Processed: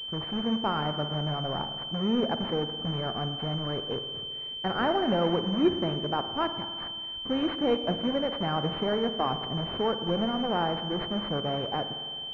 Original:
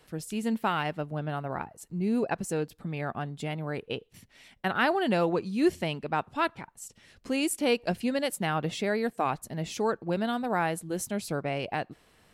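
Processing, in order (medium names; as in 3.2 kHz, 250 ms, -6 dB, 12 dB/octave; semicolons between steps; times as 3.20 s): vibrato 14 Hz 5.9 cents; in parallel at -4 dB: integer overflow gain 29.5 dB; on the sum: spring tank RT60 1.9 s, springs 53 ms, chirp 45 ms, DRR 8.5 dB; class-D stage that switches slowly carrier 3.1 kHz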